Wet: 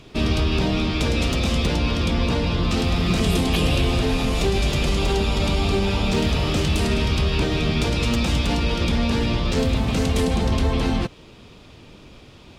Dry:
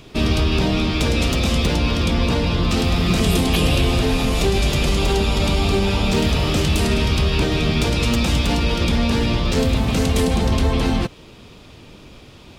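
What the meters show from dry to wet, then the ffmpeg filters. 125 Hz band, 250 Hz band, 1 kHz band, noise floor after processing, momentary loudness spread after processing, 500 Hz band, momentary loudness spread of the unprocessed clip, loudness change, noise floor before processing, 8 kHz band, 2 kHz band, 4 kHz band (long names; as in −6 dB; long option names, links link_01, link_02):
−2.5 dB, −2.5 dB, −2.5 dB, −46 dBFS, 2 LU, −2.5 dB, 2 LU, −2.5 dB, −43 dBFS, −4.5 dB, −2.5 dB, −3.0 dB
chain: -af "highshelf=frequency=12000:gain=-9,volume=-2.5dB"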